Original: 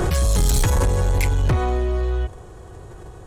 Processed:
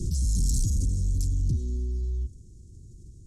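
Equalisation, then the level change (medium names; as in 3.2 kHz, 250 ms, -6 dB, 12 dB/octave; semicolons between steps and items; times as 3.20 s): elliptic band-stop 260–5500 Hz, stop band 60 dB; distance through air 81 m; treble shelf 5.6 kHz +11.5 dB; -6.0 dB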